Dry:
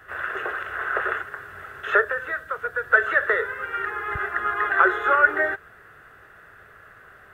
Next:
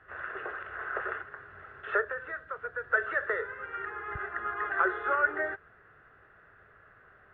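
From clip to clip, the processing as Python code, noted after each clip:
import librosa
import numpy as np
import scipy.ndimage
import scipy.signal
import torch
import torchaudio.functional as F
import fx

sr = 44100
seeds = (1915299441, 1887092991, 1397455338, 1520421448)

y = fx.air_absorb(x, sr, metres=360.0)
y = y * 10.0 ** (-7.0 / 20.0)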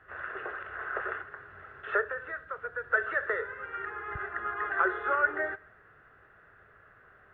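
y = fx.echo_feedback(x, sr, ms=67, feedback_pct=58, wet_db=-22)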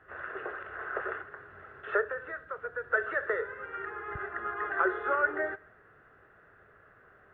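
y = fx.peak_eq(x, sr, hz=340.0, db=5.5, octaves=2.8)
y = y * 10.0 ** (-3.0 / 20.0)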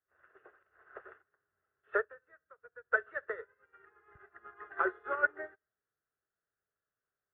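y = fx.upward_expand(x, sr, threshold_db=-46.0, expansion=2.5)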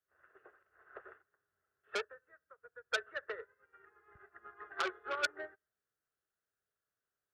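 y = fx.transformer_sat(x, sr, knee_hz=3500.0)
y = y * 10.0 ** (-1.5 / 20.0)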